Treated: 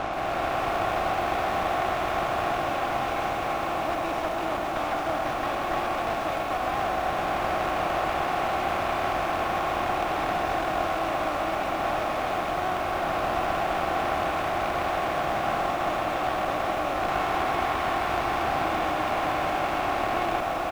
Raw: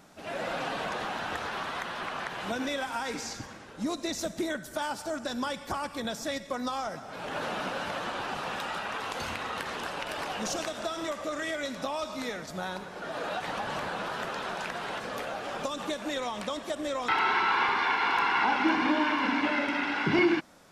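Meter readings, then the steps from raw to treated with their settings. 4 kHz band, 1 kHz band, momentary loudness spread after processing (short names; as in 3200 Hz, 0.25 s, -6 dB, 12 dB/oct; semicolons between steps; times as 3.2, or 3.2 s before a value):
0.0 dB, +7.0 dB, 2 LU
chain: per-bin compression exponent 0.2; low shelf 370 Hz +7.5 dB; in parallel at +1.5 dB: limiter -15 dBFS, peak gain reduction 11.5 dB; on the sum: vowel filter a; one-sided clip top -33 dBFS; on a send: echo 0.336 s -10 dB; on the sum: lo-fi delay 0.129 s, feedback 80%, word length 7-bit, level -10 dB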